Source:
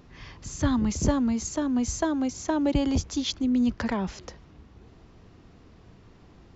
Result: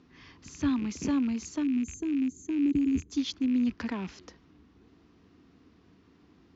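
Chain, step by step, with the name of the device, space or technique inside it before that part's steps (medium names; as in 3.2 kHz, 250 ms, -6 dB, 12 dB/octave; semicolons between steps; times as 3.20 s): 0.69–1.13 s: high-pass 130 Hz 6 dB/octave; 1.63–3.12 s: time-frequency box 470–6200 Hz -19 dB; car door speaker with a rattle (rattle on loud lows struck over -35 dBFS, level -30 dBFS; cabinet simulation 88–6500 Hz, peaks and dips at 120 Hz -10 dB, 280 Hz +7 dB, 580 Hz -8 dB, 820 Hz -4 dB); trim -6 dB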